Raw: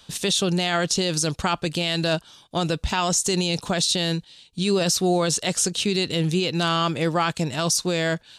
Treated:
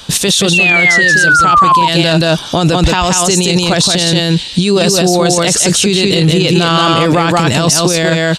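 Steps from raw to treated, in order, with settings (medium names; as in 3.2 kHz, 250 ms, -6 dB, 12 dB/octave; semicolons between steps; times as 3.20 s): on a send: delay 177 ms -3.5 dB; on the sum: painted sound fall, 0.53–1.88 s, 930–2800 Hz -15 dBFS; level rider; loudness maximiser +19.5 dB; trim -1 dB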